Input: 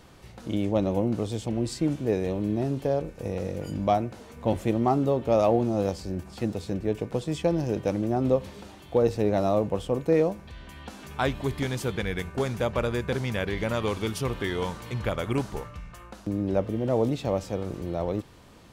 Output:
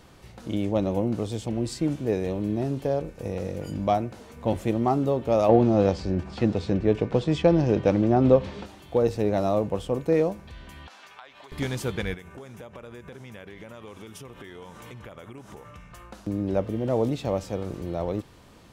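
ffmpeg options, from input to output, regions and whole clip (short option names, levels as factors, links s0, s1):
-filter_complex "[0:a]asettb=1/sr,asplit=3[s0][s1][s2];[s0]atrim=end=5.494[s3];[s1]atrim=start=5.49:end=8.66,asetpts=PTS-STARTPTS,afade=t=in:d=0.004:c=qsin,afade=t=out:st=3.166:d=0.004:c=qsin,lowpass=4400,acontrast=45[s4];[s2]atrim=start=8.656[s5];[s3][s4]acrossfade=d=0.004:c1=hsin:c2=qsin[s6];[s6][s5]acrossfade=d=0.004:c1=qsin:c2=hsin,asettb=1/sr,asplit=3[s7][s8][s9];[s7]atrim=end=10.874[s10];[s8]atrim=start=10.87:end=11.52,asetpts=PTS-STARTPTS,afade=t=in:d=0.004:c=qsin,afade=t=out:st=0.646:d=0.004:c=qsin,acrossover=split=590 5900:gain=0.141 1 0.2[s11][s12][s13];[s11][s12][s13]amix=inputs=3:normalize=0,acompressor=threshold=0.00891:ratio=12:attack=3.2:release=140:knee=1:detection=peak,highpass=f=350:p=1[s14];[s9]atrim=start=11.516[s15];[s10][s14]acrossfade=d=0.004:c1=hsin:c2=qsin[s16];[s16][s15]acrossfade=d=0.004:c1=qsin:c2=hsin,asettb=1/sr,asplit=3[s17][s18][s19];[s17]atrim=end=12.144[s20];[s18]atrim=start=12.14:end=15.91,asetpts=PTS-STARTPTS,afade=t=in:d=0.004:c=qsin,afade=t=out:st=3.766:d=0.004:c=qsin,highpass=f=130:p=1,equalizer=f=4400:w=5.2:g=-10,acompressor=threshold=0.0112:ratio=8:attack=3.2:release=140:knee=1:detection=peak[s21];[s19]atrim=start=15.906[s22];[s20][s21]acrossfade=d=0.004:c1=hsin:c2=qsin[s23];[s23][s22]acrossfade=d=0.004:c1=qsin:c2=hsin"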